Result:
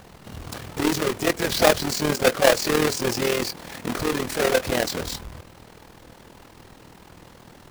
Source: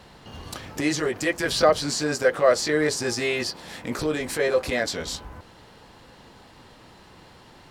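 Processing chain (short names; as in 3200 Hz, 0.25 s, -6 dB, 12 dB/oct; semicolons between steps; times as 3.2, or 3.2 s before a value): half-waves squared off; harmoniser -12 st -15 dB, +5 st -10 dB; AM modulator 40 Hz, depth 55%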